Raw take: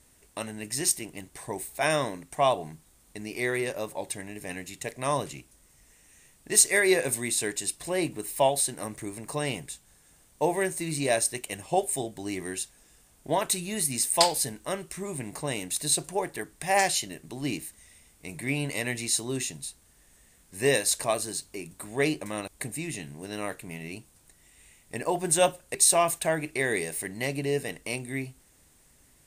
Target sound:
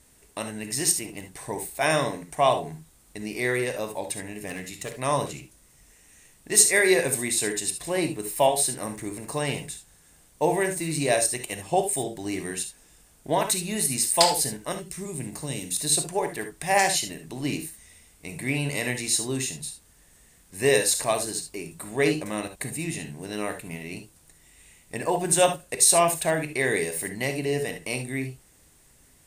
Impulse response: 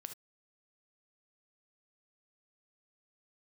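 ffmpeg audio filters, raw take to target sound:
-filter_complex "[0:a]asettb=1/sr,asplit=3[a][b][c];[a]atrim=end=4.484[d];[b]atrim=start=4.48:end=4.92,asetpts=PTS-STARTPTS,afade=t=in:d=0.004:c=qsin,afade=t=out:st=0.436:d=0.004:c=qsin,volume=29dB,asoftclip=hard,volume=-29dB[e];[c]atrim=start=4.916[f];[d][e]acrossfade=d=0.004:c1=hsin:c2=qsin[g];[g][f]acrossfade=d=0.004:c1=qsin:c2=hsin,asettb=1/sr,asplit=3[h][i][j];[h]atrim=end=14.724[k];[i]atrim=start=14.72:end=15.79,asetpts=PTS-STARTPTS,afade=t=in:d=0.004:c=qsin,afade=t=out:st=1.066:d=0.004:c=qsin,acrossover=split=360|3000[l][m][n];[m]acompressor=threshold=-49dB:ratio=2.5[o];[l][o][n]amix=inputs=3:normalize=0[p];[j]atrim=start=15.786[q];[k][p]acrossfade=d=0.004:c1=hsin:c2=qsin[r];[r][q]acrossfade=d=0.004:c1=qsin:c2=hsin[s];[1:a]atrim=start_sample=2205[t];[s][t]afir=irnorm=-1:irlink=0,volume=7dB"

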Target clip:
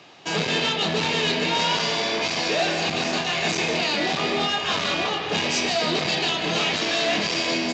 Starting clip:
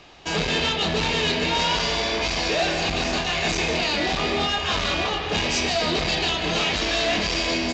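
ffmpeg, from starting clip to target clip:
-af "highpass=f=120:w=0.5412,highpass=f=120:w=1.3066"

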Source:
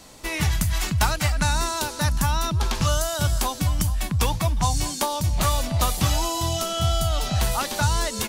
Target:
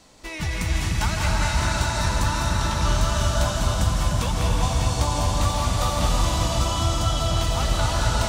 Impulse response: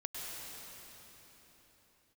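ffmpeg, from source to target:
-filter_complex "[0:a]equalizer=f=12k:t=o:w=0.42:g=-14.5[a];[1:a]atrim=start_sample=2205,asetrate=28665,aresample=44100[b];[a][b]afir=irnorm=-1:irlink=0,volume=-3.5dB"

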